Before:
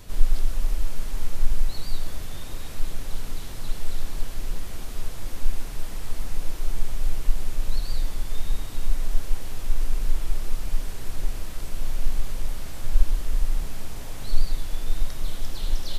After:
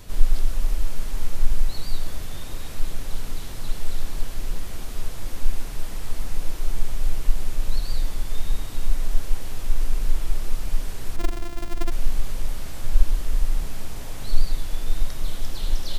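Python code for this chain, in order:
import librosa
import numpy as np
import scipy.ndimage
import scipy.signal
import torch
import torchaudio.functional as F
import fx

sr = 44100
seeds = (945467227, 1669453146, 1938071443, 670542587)

y = fx.sample_sort(x, sr, block=128, at=(11.16, 11.92))
y = F.gain(torch.from_numpy(y), 1.5).numpy()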